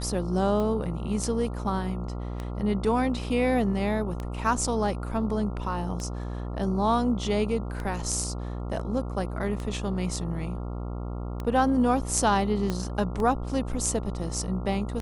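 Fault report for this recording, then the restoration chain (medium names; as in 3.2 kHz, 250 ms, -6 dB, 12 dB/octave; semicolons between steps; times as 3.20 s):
buzz 60 Hz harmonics 23 -33 dBFS
tick 33 1/3 rpm -20 dBFS
12.70 s: pop -15 dBFS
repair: de-click; de-hum 60 Hz, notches 23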